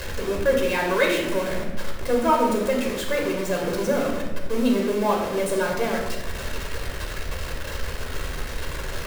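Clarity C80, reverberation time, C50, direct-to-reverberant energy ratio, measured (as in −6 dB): 6.0 dB, 1.2 s, 3.5 dB, 0.0 dB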